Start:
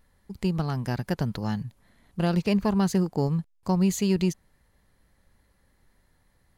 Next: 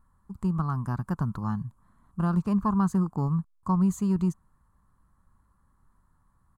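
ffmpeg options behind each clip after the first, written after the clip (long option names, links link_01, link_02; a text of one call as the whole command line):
ffmpeg -i in.wav -af "firequalizer=gain_entry='entry(180,0);entry(490,-13);entry(770,-6);entry(1100,9);entry(2000,-18);entry(3300,-19);entry(5200,-18);entry(7800,-5);entry(12000,-11)':delay=0.05:min_phase=1" out.wav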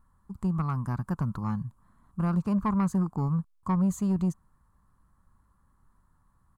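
ffmpeg -i in.wav -af "asoftclip=type=tanh:threshold=-18dB" out.wav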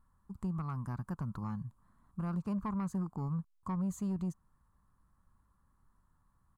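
ffmpeg -i in.wav -af "alimiter=limit=-24dB:level=0:latency=1:release=219,volume=-5.5dB" out.wav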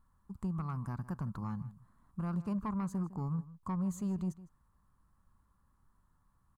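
ffmpeg -i in.wav -filter_complex "[0:a]asplit=2[link_01][link_02];[link_02]adelay=157.4,volume=-17dB,highshelf=frequency=4000:gain=-3.54[link_03];[link_01][link_03]amix=inputs=2:normalize=0" out.wav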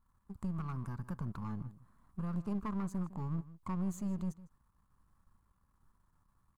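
ffmpeg -i in.wav -af "aeval=exprs='if(lt(val(0),0),0.447*val(0),val(0))':channel_layout=same,volume=1dB" out.wav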